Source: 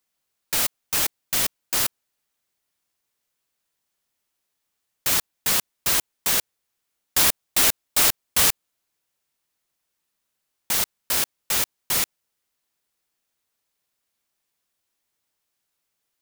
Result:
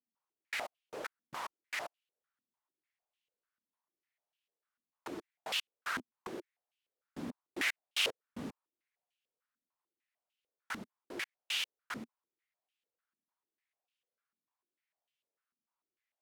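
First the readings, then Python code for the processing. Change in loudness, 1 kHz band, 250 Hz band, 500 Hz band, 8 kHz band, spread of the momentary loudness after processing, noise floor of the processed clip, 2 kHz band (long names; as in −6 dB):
−18.0 dB, −12.5 dB, −7.5 dB, −10.5 dB, −26.5 dB, 13 LU, below −85 dBFS, −9.5 dB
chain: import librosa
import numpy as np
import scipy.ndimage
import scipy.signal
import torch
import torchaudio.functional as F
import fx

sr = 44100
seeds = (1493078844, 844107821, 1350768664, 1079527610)

y = fx.filter_held_bandpass(x, sr, hz=6.7, low_hz=240.0, high_hz=2900.0)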